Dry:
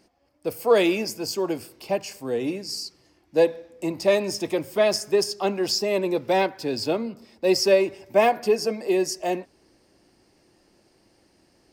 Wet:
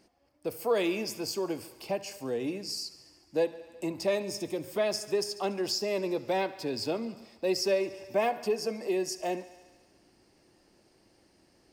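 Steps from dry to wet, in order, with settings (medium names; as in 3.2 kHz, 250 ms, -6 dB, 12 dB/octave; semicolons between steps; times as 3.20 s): 4.22–4.64 s: peaking EQ 1.4 kHz -8 dB 2.7 oct; on a send: thinning echo 71 ms, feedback 72%, high-pass 310 Hz, level -19 dB; on the sum: compression 1.5:1, threshold -31 dBFS, peak gain reduction 7 dB; trim -3 dB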